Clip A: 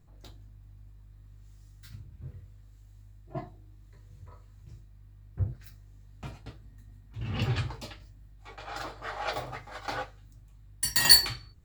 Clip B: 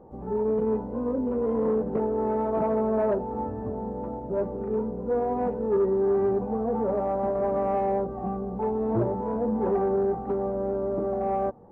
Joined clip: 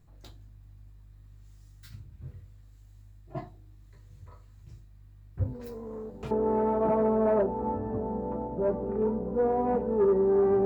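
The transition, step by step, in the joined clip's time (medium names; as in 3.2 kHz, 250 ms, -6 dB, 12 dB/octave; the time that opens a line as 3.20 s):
clip A
5.40 s: add clip B from 1.12 s 0.91 s -15 dB
6.31 s: go over to clip B from 2.03 s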